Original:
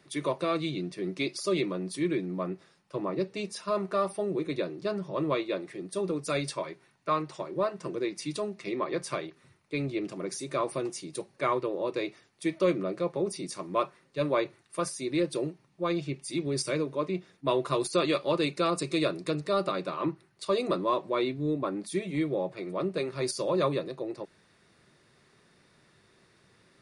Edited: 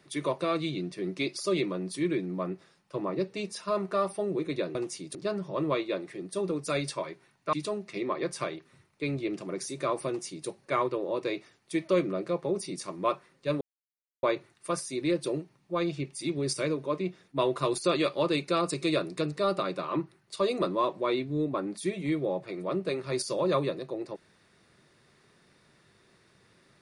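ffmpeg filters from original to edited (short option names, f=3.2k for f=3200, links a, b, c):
-filter_complex "[0:a]asplit=5[a][b][c][d][e];[a]atrim=end=4.752[f];[b]atrim=start=10.778:end=11.182[g];[c]atrim=start=4.748:end=7.132[h];[d]atrim=start=8.238:end=14.32,asetpts=PTS-STARTPTS,afade=t=out:st=6.078:d=0.004:c=hsin,apad=pad_dur=0.62[i];[e]atrim=start=14.32,asetpts=PTS-STARTPTS,afade=t=in:d=0.004:c=hsin[j];[f][g]acrossfade=d=0.004:c1=hsin:c2=hsin[k];[k][h]acrossfade=d=0.004:c1=hsin:c2=hsin[l];[i][j]concat=n=2:v=0:a=1[m];[l][m]acrossfade=d=0.004:c1=hsin:c2=hsin"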